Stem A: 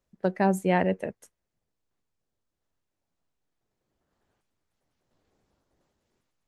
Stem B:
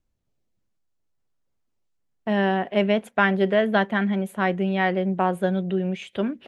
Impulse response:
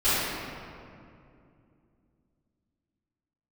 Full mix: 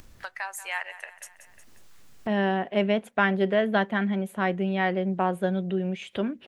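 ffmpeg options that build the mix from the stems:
-filter_complex "[0:a]highpass=f=1100:w=0.5412,highpass=f=1100:w=1.3066,dynaudnorm=f=150:g=5:m=2,volume=0.531,asplit=2[s0][s1];[s1]volume=0.126[s2];[1:a]volume=0.708[s3];[s2]aecho=0:1:181|362|543|724:1|0.3|0.09|0.027[s4];[s0][s3][s4]amix=inputs=3:normalize=0,acompressor=mode=upward:threshold=0.0398:ratio=2.5"

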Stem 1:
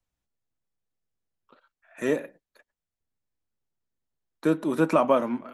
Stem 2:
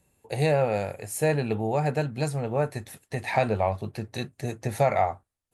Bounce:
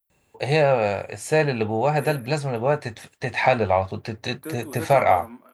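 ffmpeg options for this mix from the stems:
-filter_complex "[0:a]equalizer=f=6800:w=0.34:g=-2.5,aexciter=amount=14:drive=7.2:freq=9700,volume=0.422[s0];[1:a]lowpass=5700,acontrast=53,adelay=100,volume=1.26[s1];[s0][s1]amix=inputs=2:normalize=0,lowshelf=f=470:g=-7"

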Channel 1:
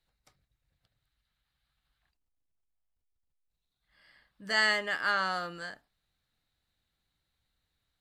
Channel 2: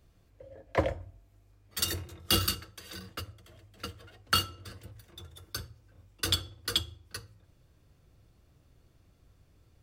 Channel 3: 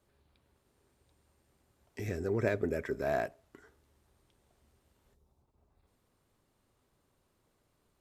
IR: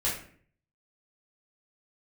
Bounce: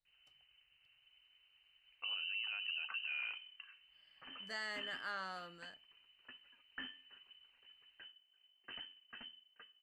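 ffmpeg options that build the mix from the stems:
-filter_complex "[0:a]volume=0.2[s0];[1:a]equalizer=f=250:t=o:w=1.9:g=-5,aeval=exprs='(tanh(20*val(0)+0.5)-tanh(0.5))/20':c=same,adelay=2450,volume=0.266[s1];[2:a]highshelf=f=2100:g=-12,adelay=50,volume=1.19[s2];[s1][s2]amix=inputs=2:normalize=0,lowpass=f=2600:t=q:w=0.5098,lowpass=f=2600:t=q:w=0.6013,lowpass=f=2600:t=q:w=0.9,lowpass=f=2600:t=q:w=2.563,afreqshift=-3100,alimiter=level_in=1.26:limit=0.0631:level=0:latency=1:release=25,volume=0.794,volume=1[s3];[s0][s3]amix=inputs=2:normalize=0,alimiter=level_in=2.82:limit=0.0631:level=0:latency=1:release=82,volume=0.355"

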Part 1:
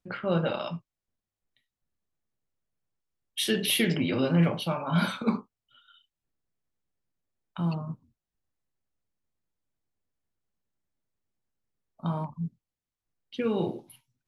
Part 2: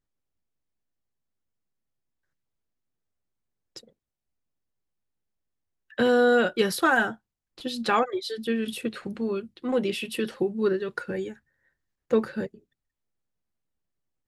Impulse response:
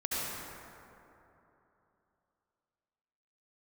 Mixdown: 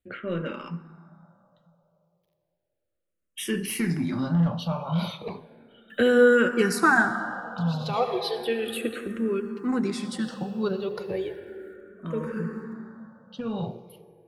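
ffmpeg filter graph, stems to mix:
-filter_complex "[0:a]equalizer=f=130:t=o:w=2.1:g=3.5,asoftclip=type=tanh:threshold=0.15,volume=1,asplit=3[s0][s1][s2];[s1]volume=0.0794[s3];[1:a]equalizer=f=69:w=1.5:g=2,acrusher=bits=11:mix=0:aa=0.000001,volume=1.26,asplit=2[s4][s5];[s5]volume=0.211[s6];[s2]apad=whole_len=629382[s7];[s4][s7]sidechaincompress=threshold=0.00708:ratio=8:attack=16:release=104[s8];[2:a]atrim=start_sample=2205[s9];[s3][s6]amix=inputs=2:normalize=0[s10];[s10][s9]afir=irnorm=-1:irlink=0[s11];[s0][s8][s11]amix=inputs=3:normalize=0,asplit=2[s12][s13];[s13]afreqshift=-0.34[s14];[s12][s14]amix=inputs=2:normalize=1"

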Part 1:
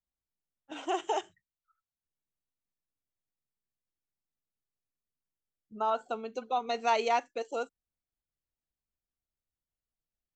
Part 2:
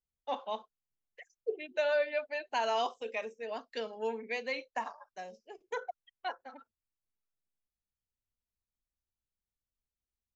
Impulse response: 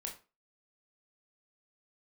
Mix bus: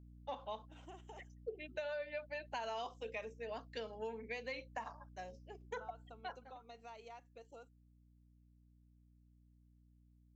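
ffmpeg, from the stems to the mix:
-filter_complex "[0:a]acompressor=threshold=0.0251:ratio=5,volume=0.112[s0];[1:a]aeval=exprs='val(0)+0.00251*(sin(2*PI*60*n/s)+sin(2*PI*2*60*n/s)/2+sin(2*PI*3*60*n/s)/3+sin(2*PI*4*60*n/s)/4+sin(2*PI*5*60*n/s)/5)':c=same,volume=0.596,afade=t=out:st=5.95:d=0.68:silence=0.334965[s1];[s0][s1]amix=inputs=2:normalize=0,acompressor=threshold=0.0112:ratio=6"

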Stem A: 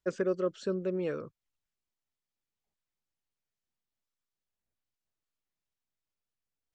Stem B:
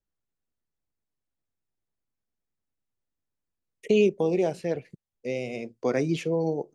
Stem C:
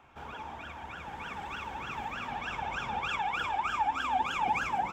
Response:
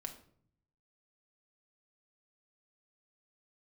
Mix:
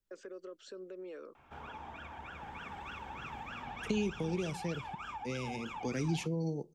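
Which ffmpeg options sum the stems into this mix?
-filter_complex "[0:a]highpass=f=290:w=0.5412,highpass=f=290:w=1.3066,alimiter=level_in=2.24:limit=0.0631:level=0:latency=1:release=100,volume=0.447,adelay=50,volume=0.501[s0];[1:a]equalizer=f=660:w=1.5:g=-6,acompressor=threshold=0.0631:ratio=2.5,volume=0.944,asplit=2[s1][s2];[s2]volume=0.0841[s3];[2:a]highshelf=f=4100:g=-7.5,bandreject=f=55.83:t=h:w=4,bandreject=f=111.66:t=h:w=4,bandreject=f=167.49:t=h:w=4,bandreject=f=223.32:t=h:w=4,bandreject=f=279.15:t=h:w=4,bandreject=f=334.98:t=h:w=4,bandreject=f=390.81:t=h:w=4,bandreject=f=446.64:t=h:w=4,bandreject=f=502.47:t=h:w=4,bandreject=f=558.3:t=h:w=4,bandreject=f=614.13:t=h:w=4,bandreject=f=669.96:t=h:w=4,bandreject=f=725.79:t=h:w=4,bandreject=f=781.62:t=h:w=4,bandreject=f=837.45:t=h:w=4,bandreject=f=893.28:t=h:w=4,bandreject=f=949.11:t=h:w=4,bandreject=f=1004.94:t=h:w=4,bandreject=f=1060.77:t=h:w=4,bandreject=f=1116.6:t=h:w=4,bandreject=f=1172.43:t=h:w=4,bandreject=f=1228.26:t=h:w=4,alimiter=level_in=1.26:limit=0.0631:level=0:latency=1:release=474,volume=0.794,adelay=1350,volume=0.75[s4];[3:a]atrim=start_sample=2205[s5];[s3][s5]afir=irnorm=-1:irlink=0[s6];[s0][s1][s4][s6]amix=inputs=4:normalize=0,acrossover=split=230|3000[s7][s8][s9];[s8]acompressor=threshold=0.00631:ratio=2.5[s10];[s7][s10][s9]amix=inputs=3:normalize=0"

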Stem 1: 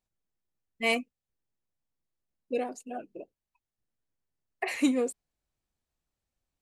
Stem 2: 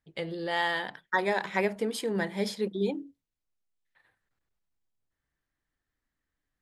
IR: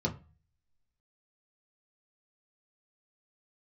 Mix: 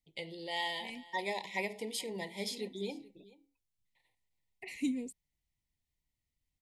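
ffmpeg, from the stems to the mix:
-filter_complex "[0:a]firequalizer=gain_entry='entry(130,0);entry(590,-26);entry(1700,-11)':delay=0.05:min_phase=1,volume=1.06[s0];[1:a]tiltshelf=f=1300:g=-5.5,flanger=delay=7.4:depth=3.3:regen=-86:speed=0.48:shape=sinusoidal,volume=0.841,asplit=3[s1][s2][s3];[s2]volume=0.0891[s4];[s3]apad=whole_len=296177[s5];[s0][s5]sidechaincompress=threshold=0.00631:ratio=8:attack=46:release=459[s6];[s4]aecho=0:1:432:1[s7];[s6][s1][s7]amix=inputs=3:normalize=0,asuperstop=centerf=1400:order=12:qfactor=1.6"

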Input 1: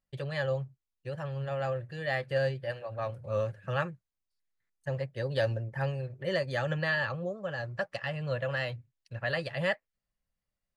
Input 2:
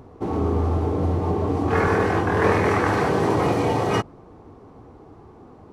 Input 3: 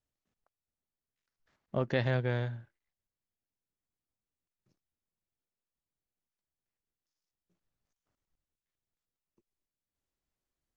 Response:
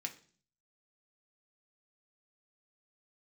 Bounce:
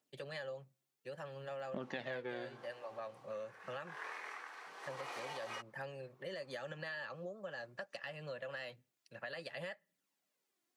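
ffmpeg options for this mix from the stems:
-filter_complex "[0:a]volume=0.501,asplit=2[s0][s1];[s1]volume=0.0668[s2];[1:a]highpass=1400,highshelf=f=6000:g=-11,tremolo=f=0.8:d=0.8,adelay=1600,volume=2.11,afade=t=out:st=2.35:d=0.45:silence=0.281838,afade=t=in:st=4.51:d=0.32:silence=0.281838[s3];[2:a]aphaser=in_gain=1:out_gain=1:delay=3:decay=0.53:speed=0.61:type=triangular,volume=1.26,asplit=2[s4][s5];[s5]volume=0.447[s6];[s0][s3]amix=inputs=2:normalize=0,highshelf=f=5200:g=6.5,alimiter=level_in=1.68:limit=0.0631:level=0:latency=1:release=89,volume=0.596,volume=1[s7];[3:a]atrim=start_sample=2205[s8];[s2][s6]amix=inputs=2:normalize=0[s9];[s9][s8]afir=irnorm=-1:irlink=0[s10];[s4][s7][s10]amix=inputs=3:normalize=0,highpass=f=190:w=0.5412,highpass=f=190:w=1.3066,acompressor=threshold=0.00794:ratio=4"

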